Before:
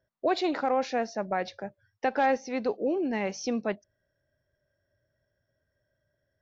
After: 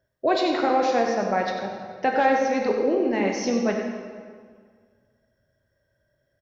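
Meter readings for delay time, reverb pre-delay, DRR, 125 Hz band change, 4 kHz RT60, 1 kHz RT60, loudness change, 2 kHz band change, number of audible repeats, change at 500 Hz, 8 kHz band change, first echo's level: 94 ms, 8 ms, 0.5 dB, n/a, 1.4 s, 1.8 s, +6.0 dB, +6.0 dB, 1, +6.5 dB, n/a, -8.5 dB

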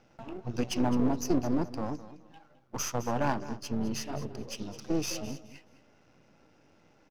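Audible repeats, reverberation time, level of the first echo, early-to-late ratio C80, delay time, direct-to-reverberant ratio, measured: 2, none, -15.0 dB, none, 0.211 s, none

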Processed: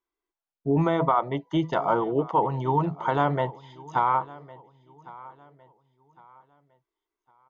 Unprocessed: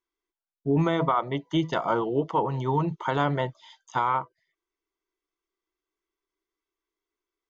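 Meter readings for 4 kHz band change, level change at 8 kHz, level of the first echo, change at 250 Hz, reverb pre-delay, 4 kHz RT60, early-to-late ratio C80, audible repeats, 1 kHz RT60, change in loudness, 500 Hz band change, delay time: -4.0 dB, n/a, -20.5 dB, +0.5 dB, none, none, none, 2, none, +1.5 dB, +1.5 dB, 1.107 s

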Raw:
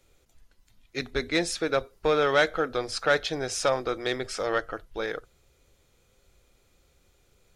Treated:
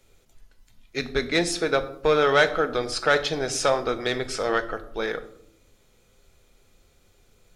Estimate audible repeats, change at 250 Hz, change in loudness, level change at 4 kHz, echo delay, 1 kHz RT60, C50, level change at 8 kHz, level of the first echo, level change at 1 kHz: none, +3.0 dB, +3.0 dB, +3.5 dB, none, 0.65 s, 14.5 dB, +3.5 dB, none, +3.5 dB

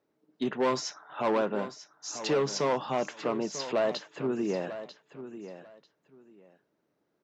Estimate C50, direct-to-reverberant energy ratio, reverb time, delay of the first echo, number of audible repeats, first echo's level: none, none, none, 0.943 s, 2, -12.5 dB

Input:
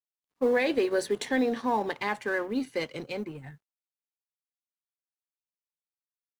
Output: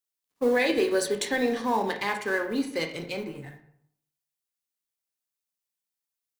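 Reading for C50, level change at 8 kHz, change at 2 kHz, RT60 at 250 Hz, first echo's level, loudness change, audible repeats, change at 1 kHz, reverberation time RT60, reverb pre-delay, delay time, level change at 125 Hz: 9.0 dB, +7.5 dB, +3.0 dB, 0.70 s, none, +2.0 dB, none, +1.5 dB, 0.70 s, 17 ms, none, +2.0 dB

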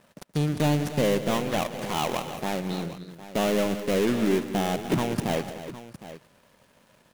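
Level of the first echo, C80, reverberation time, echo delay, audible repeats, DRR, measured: -18.0 dB, none, none, 0.124 s, 4, none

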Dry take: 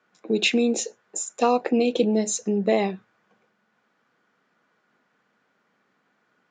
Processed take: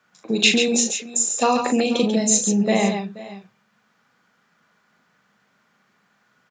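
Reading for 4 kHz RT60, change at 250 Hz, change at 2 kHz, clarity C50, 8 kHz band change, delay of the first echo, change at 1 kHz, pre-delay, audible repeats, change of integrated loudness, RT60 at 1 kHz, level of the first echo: none, +3.5 dB, +6.0 dB, none, +10.5 dB, 40 ms, +3.0 dB, none, 4, +4.5 dB, none, -6.5 dB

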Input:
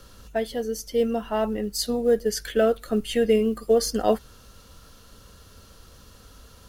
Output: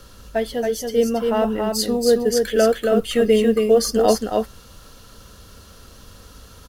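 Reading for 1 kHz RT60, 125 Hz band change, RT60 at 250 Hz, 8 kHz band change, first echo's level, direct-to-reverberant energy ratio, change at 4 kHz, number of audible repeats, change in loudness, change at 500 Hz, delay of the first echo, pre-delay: none, n/a, none, +5.5 dB, -4.0 dB, none, +5.5 dB, 1, +5.0 dB, +5.5 dB, 0.276 s, none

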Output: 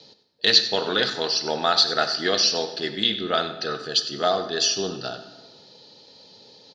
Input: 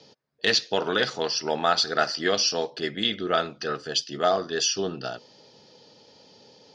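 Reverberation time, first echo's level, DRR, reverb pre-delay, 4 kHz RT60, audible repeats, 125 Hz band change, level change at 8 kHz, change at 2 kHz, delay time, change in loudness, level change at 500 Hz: 1.4 s, -13.5 dB, 9.0 dB, 25 ms, 1.0 s, 1, +0.5 dB, +1.5 dB, +1.0 dB, 96 ms, +3.5 dB, +0.5 dB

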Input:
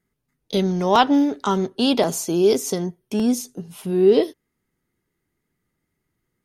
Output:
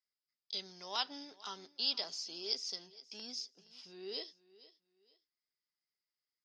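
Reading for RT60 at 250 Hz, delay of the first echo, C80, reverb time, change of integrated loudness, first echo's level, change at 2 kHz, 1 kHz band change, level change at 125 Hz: none, 0.469 s, none, none, -19.5 dB, -19.5 dB, -18.5 dB, -25.0 dB, under -35 dB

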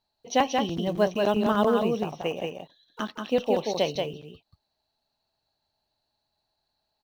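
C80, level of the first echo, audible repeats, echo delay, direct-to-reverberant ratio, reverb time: none, -4.0 dB, 1, 0.181 s, none, none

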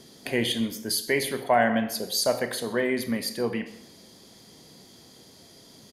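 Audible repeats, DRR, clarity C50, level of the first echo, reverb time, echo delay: 1, 10.0 dB, 12.0 dB, -21.0 dB, 0.75 s, 0.131 s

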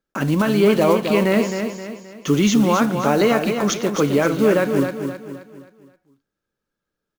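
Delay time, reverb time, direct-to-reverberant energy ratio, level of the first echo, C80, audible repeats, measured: 0.263 s, none, none, -7.0 dB, none, 4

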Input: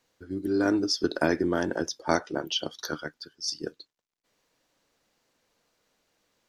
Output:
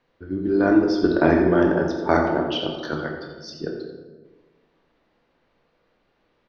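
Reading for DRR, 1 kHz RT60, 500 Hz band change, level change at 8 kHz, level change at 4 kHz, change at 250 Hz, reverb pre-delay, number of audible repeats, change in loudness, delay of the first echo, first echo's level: 0.5 dB, 1.1 s, +8.5 dB, under -10 dB, -1.5 dB, +8.5 dB, 20 ms, 1, +7.5 dB, 86 ms, -10.5 dB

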